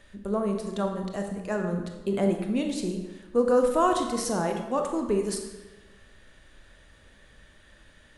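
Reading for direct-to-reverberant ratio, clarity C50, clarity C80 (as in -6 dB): 3.5 dB, 5.0 dB, 7.5 dB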